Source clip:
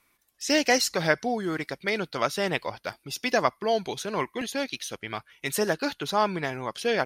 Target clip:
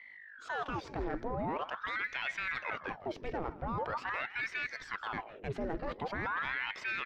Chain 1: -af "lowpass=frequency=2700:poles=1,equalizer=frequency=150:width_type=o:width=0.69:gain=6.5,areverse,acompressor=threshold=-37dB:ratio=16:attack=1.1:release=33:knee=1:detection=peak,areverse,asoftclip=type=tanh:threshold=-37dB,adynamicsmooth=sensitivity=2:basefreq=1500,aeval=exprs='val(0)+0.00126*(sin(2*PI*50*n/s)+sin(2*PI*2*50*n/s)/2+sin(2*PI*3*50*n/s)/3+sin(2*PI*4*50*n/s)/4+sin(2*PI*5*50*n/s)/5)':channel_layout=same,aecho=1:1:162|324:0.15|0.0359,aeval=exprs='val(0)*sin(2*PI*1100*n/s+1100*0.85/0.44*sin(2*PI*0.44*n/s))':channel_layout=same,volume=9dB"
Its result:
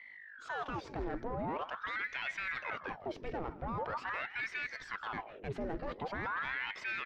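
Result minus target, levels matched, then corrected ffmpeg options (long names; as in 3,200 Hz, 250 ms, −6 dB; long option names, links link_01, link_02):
soft clipping: distortion +15 dB
-af "lowpass=frequency=2700:poles=1,equalizer=frequency=150:width_type=o:width=0.69:gain=6.5,areverse,acompressor=threshold=-37dB:ratio=16:attack=1.1:release=33:knee=1:detection=peak,areverse,asoftclip=type=tanh:threshold=-28dB,adynamicsmooth=sensitivity=2:basefreq=1500,aeval=exprs='val(0)+0.00126*(sin(2*PI*50*n/s)+sin(2*PI*2*50*n/s)/2+sin(2*PI*3*50*n/s)/3+sin(2*PI*4*50*n/s)/4+sin(2*PI*5*50*n/s)/5)':channel_layout=same,aecho=1:1:162|324:0.15|0.0359,aeval=exprs='val(0)*sin(2*PI*1100*n/s+1100*0.85/0.44*sin(2*PI*0.44*n/s))':channel_layout=same,volume=9dB"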